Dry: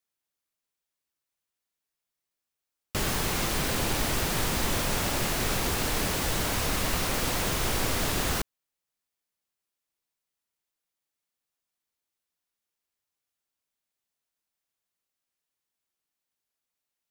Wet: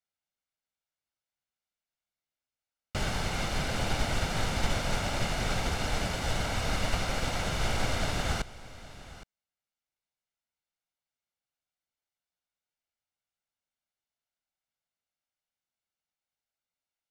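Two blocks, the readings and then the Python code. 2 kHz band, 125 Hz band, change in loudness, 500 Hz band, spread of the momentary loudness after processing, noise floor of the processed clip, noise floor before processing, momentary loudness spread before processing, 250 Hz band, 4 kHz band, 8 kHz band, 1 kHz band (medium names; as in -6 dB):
-2.5 dB, 0.0 dB, -4.0 dB, -2.5 dB, 10 LU, under -85 dBFS, under -85 dBFS, 1 LU, -3.5 dB, -3.5 dB, -8.0 dB, -2.0 dB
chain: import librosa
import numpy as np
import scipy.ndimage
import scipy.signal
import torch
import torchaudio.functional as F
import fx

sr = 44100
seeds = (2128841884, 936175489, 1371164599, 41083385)

y = fx.air_absorb(x, sr, metres=69.0)
y = y + 0.41 * np.pad(y, (int(1.4 * sr / 1000.0), 0))[:len(y)]
y = y + 10.0 ** (-15.5 / 20.0) * np.pad(y, (int(815 * sr / 1000.0), 0))[:len(y)]
y = fx.upward_expand(y, sr, threshold_db=-30.0, expansion=1.5)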